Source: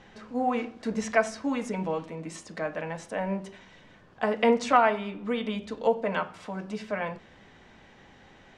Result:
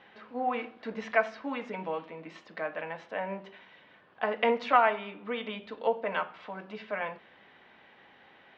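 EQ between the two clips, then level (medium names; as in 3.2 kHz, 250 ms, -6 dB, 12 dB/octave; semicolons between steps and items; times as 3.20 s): high-pass 620 Hz 6 dB/octave; low-pass 3.6 kHz 24 dB/octave; 0.0 dB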